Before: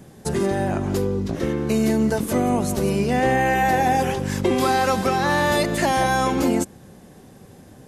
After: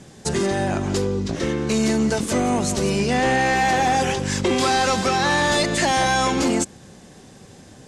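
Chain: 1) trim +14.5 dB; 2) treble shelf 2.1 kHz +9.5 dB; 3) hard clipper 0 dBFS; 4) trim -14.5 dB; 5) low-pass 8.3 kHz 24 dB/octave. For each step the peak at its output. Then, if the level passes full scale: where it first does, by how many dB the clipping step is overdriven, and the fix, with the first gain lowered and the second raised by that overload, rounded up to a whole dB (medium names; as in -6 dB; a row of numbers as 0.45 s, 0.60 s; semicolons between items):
+5.0 dBFS, +10.0 dBFS, 0.0 dBFS, -14.5 dBFS, -12.5 dBFS; step 1, 10.0 dB; step 1 +4.5 dB, step 4 -4.5 dB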